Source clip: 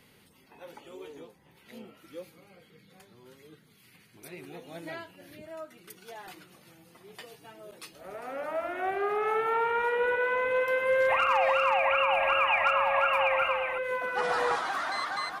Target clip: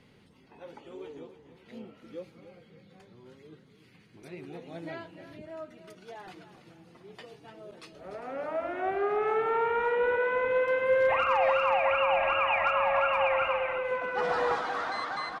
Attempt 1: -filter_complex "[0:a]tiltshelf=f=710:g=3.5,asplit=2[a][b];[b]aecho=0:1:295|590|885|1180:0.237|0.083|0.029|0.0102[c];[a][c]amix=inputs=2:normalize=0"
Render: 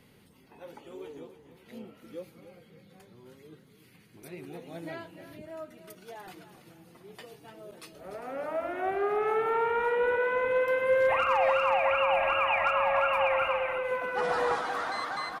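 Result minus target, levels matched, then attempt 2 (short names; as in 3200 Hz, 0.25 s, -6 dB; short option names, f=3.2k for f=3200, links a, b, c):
8000 Hz band +5.5 dB
-filter_complex "[0:a]lowpass=6.1k,tiltshelf=f=710:g=3.5,asplit=2[a][b];[b]aecho=0:1:295|590|885|1180:0.237|0.083|0.029|0.0102[c];[a][c]amix=inputs=2:normalize=0"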